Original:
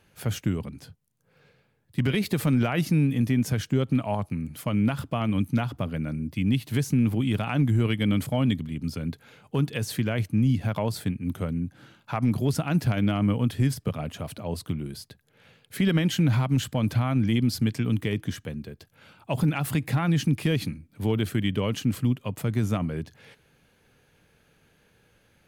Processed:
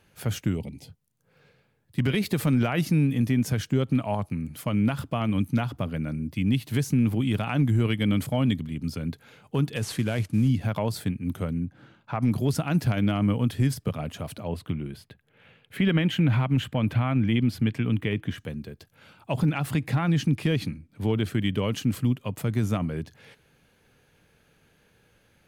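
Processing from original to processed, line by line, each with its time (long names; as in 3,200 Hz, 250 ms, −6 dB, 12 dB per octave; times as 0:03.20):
0:00.56–0:00.89: gain on a spectral selection 950–1,900 Hz −18 dB
0:09.76–0:10.49: variable-slope delta modulation 64 kbit/s
0:11.65–0:12.20: low-pass filter 2,000 Hz 6 dB per octave
0:14.48–0:18.38: high shelf with overshoot 3,800 Hz −9 dB, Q 1.5
0:19.32–0:21.42: high-shelf EQ 8,300 Hz −8.5 dB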